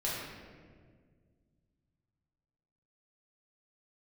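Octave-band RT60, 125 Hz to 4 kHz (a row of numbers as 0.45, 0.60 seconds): 3.2, 2.6, 2.1, 1.5, 1.4, 1.0 seconds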